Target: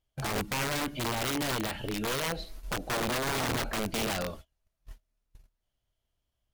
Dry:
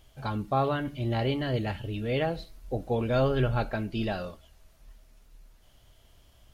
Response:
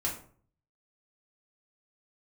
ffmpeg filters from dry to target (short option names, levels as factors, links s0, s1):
-filter_complex "[0:a]agate=range=0.0282:threshold=0.00398:ratio=16:detection=peak,asettb=1/sr,asplit=3[s0][s1][s2];[s0]atrim=end=0.844[s3];[s1]atrim=start=0.84:end=2.93,asetpts=PTS-STARTPTS,afade=t=in:d=0.004:c=qsin,afade=t=out:st=2.086:d=0.004:c=qsin,equalizer=f=98:w=1.2:g=-12[s4];[s2]atrim=start=2.926[s5];[s3][s4]acrossfade=d=0.004:c1=hsin:c2=qsin[s6];[s6][s5]acrossfade=d=0.004:c1=qsin:c2=hsin,alimiter=level_in=1.06:limit=0.0631:level=0:latency=1:release=11,volume=0.944,acompressor=threshold=0.01:ratio=2,aeval=exprs='(mod(44.7*val(0)+1,2)-1)/44.7':c=same,volume=2.37"